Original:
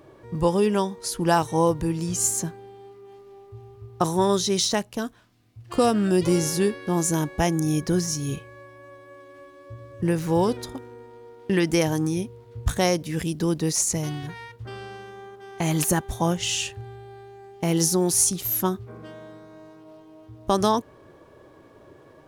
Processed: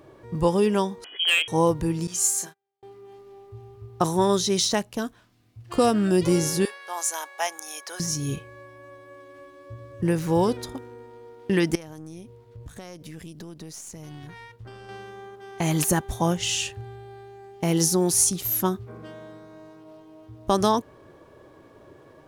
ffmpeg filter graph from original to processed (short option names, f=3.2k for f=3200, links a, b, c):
-filter_complex "[0:a]asettb=1/sr,asplit=3[a][b][c];[a]atrim=end=1.044[d];[b]atrim=start=1.04:end=1.48,asetpts=PTS-STARTPTS,afade=t=in:d=0.004:c=qsin,afade=t=out:st=0.436:d=0.004:c=qsin,lowpass=f=2.9k:t=q:w=0.5098,lowpass=f=2.9k:t=q:w=0.6013,lowpass=f=2.9k:t=q:w=0.9,lowpass=f=2.9k:t=q:w=2.563,afreqshift=-3400,asoftclip=type=hard:threshold=-15dB,lowshelf=f=220:t=q:w=3:g=-11.5[e];[c]atrim=start=1.476[f];[d][e]acrossfade=d=0.004:c1=hsin:c2=qsin[g];[g][f]acrossfade=d=0.004:c1=qsin:c2=hsin,asettb=1/sr,asplit=3[h][i][j];[h]atrim=end=2.074[k];[i]atrim=start=2.07:end=2.83,asetpts=PTS-STARTPTS,afade=t=in:d=0.004:c=qsin,afade=t=out:st=0.756:d=0.004:c=qsin,agate=range=-34dB:threshold=-32dB:ratio=16:release=100:detection=peak,highpass=f=1.4k:p=1,asplit=2[l][m];[m]adelay=33,volume=-6dB[n];[l][n]amix=inputs=2:normalize=0,atrim=end_sample=33516[o];[j]atrim=start=2.826[p];[k][o]acrossfade=d=0.004:c1=hsin:c2=qsin[q];[q][p]acrossfade=d=0.004:c1=qsin:c2=hsin,asettb=1/sr,asplit=3[r][s][t];[r]atrim=end=6.654[u];[s]atrim=start=6.65:end=8,asetpts=PTS-STARTPTS,afade=t=in:d=0.004:c=qsin,afade=t=out:st=1.346:d=0.004:c=qsin,highpass=f=690:w=0.5412,highpass=f=690:w=1.3066,asoftclip=type=hard:threshold=-15dB[v];[t]atrim=start=7.996[w];[u][v]acrossfade=d=0.004:c1=hsin:c2=qsin[x];[x][w]acrossfade=d=0.004:c1=qsin:c2=hsin,asettb=1/sr,asplit=3[y][z][aa];[y]atrim=end=11.754[ab];[z]atrim=start=11.75:end=14.89,asetpts=PTS-STARTPTS,afade=t=in:d=0.004:c=qsin,afade=t=out:st=3.136:d=0.004:c=qsin,acompressor=threshold=-33dB:ratio=10:attack=3.2:release=140:knee=1:detection=peak,aeval=exprs='(tanh(14.1*val(0)+0.7)-tanh(0.7))/14.1':c=same[ac];[aa]atrim=start=14.886[ad];[ab][ac]acrossfade=d=0.004:c1=hsin:c2=qsin[ae];[ae][ad]acrossfade=d=0.004:c1=qsin:c2=hsin"